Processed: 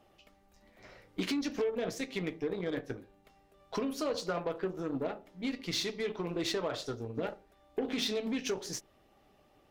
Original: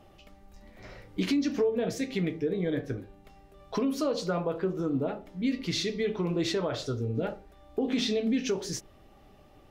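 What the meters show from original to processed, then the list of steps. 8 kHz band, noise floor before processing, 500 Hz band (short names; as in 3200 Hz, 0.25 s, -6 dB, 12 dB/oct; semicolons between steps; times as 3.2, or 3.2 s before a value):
-2.0 dB, -56 dBFS, -5.0 dB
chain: low shelf 190 Hz -9.5 dB; added harmonics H 3 -18 dB, 5 -18 dB, 7 -21 dB, 8 -31 dB, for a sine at -19 dBFS; harmonic-percussive split harmonic -3 dB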